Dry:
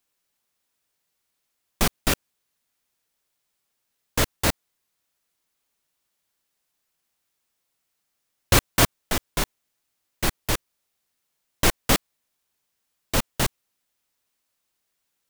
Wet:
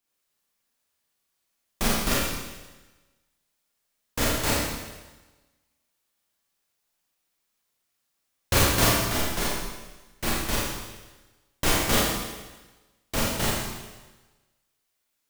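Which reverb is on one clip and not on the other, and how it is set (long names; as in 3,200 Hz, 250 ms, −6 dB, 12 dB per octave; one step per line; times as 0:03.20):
four-comb reverb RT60 1.2 s, combs from 27 ms, DRR −5.5 dB
level −6.5 dB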